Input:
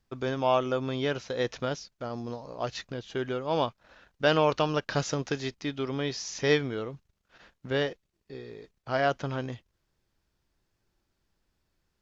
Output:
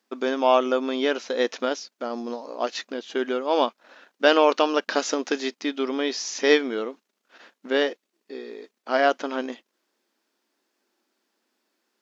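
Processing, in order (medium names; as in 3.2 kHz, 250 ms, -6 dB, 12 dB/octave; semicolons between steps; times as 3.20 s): brick-wall FIR high-pass 210 Hz; trim +6 dB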